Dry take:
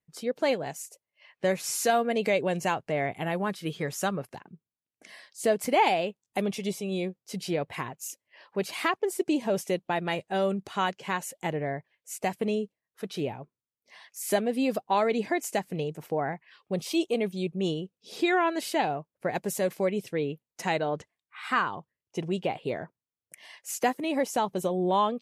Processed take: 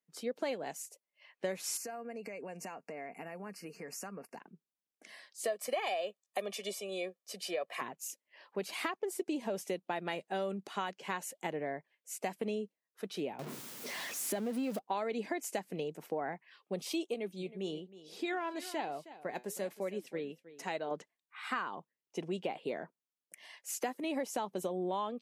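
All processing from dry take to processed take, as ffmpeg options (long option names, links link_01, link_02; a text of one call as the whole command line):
ffmpeg -i in.wav -filter_complex "[0:a]asettb=1/sr,asplit=3[link_01][link_02][link_03];[link_01]atrim=end=1.774[link_04];[link_02]atrim=start=1.77:end=4.4,asetpts=PTS-STARTPTS,afade=type=in:duration=0.004:curve=qsin,afade=type=out:start_time=2.626:duration=0.004:curve=qsin,aecho=1:1:4.3:0.32,atrim=end_sample=115983,acompressor=threshold=-35dB:ratio=10:attack=3.2:release=140:knee=1:detection=peak,asuperstop=centerf=3500:order=12:qfactor=2.4[link_05];[link_03]atrim=start=4.396[link_06];[link_04][link_05]acrossfade=duration=0.004:curve1=hsin:curve2=qsin[link_07];[link_07][link_06]acrossfade=duration=0.004:curve1=qsin:curve2=hsin,asettb=1/sr,asplit=3[link_08][link_09][link_10];[link_08]atrim=end=5.444[link_11];[link_09]atrim=start=5.44:end=7.81,asetpts=PTS-STARTPTS,afade=type=in:duration=0.004:curve=qsin,afade=type=out:start_time=2.366:duration=0.004:curve=qsin,highpass=frequency=270:width=0.5412,highpass=frequency=270:width=1.3066,equalizer=frequency=450:width_type=o:width=0.23:gain=-6,aecho=1:1:1.7:0.79,atrim=end_sample=104517[link_12];[link_10]atrim=start=7.806[link_13];[link_11][link_12]acrossfade=duration=0.004:curve1=hsin:curve2=qsin[link_14];[link_14][link_13]acrossfade=duration=0.004:curve1=qsin:curve2=hsin,asettb=1/sr,asplit=3[link_15][link_16][link_17];[link_15]atrim=end=13.394[link_18];[link_16]atrim=start=13.39:end=14.79,asetpts=PTS-STARTPTS,afade=type=in:duration=0.004:curve=qsin,afade=type=out:start_time=1.396:duration=0.004:curve=qsin,aeval=exprs='val(0)+0.5*0.0251*sgn(val(0))':channel_layout=same,lowshelf=frequency=200:gain=11,acompressor=threshold=-33dB:ratio=1.5:attack=3.2:release=140:knee=1:detection=peak[link_19];[link_17]atrim=start=14.786[link_20];[link_18][link_19]acrossfade=duration=0.004:curve1=hsin:curve2=qsin[link_21];[link_21][link_20]acrossfade=duration=0.004:curve1=qsin:curve2=hsin,asettb=1/sr,asplit=3[link_22][link_23][link_24];[link_22]atrim=end=17.144[link_25];[link_23]atrim=start=17.14:end=20.91,asetpts=PTS-STARTPTS,afade=type=in:duration=0.004:curve=qsin,afade=type=out:start_time=3.766:duration=0.004:curve=qsin,flanger=delay=1.5:depth=6.6:regen=80:speed=1.1:shape=sinusoidal,aecho=1:1:316:0.141,atrim=end_sample=166257[link_26];[link_24]atrim=start=20.906[link_27];[link_25][link_26]acrossfade=duration=0.004:curve1=hsin:curve2=qsin[link_28];[link_28][link_27]acrossfade=duration=0.004:curve1=qsin:curve2=hsin,highpass=frequency=190:width=0.5412,highpass=frequency=190:width=1.3066,acompressor=threshold=-27dB:ratio=6,volume=-4.5dB" out.wav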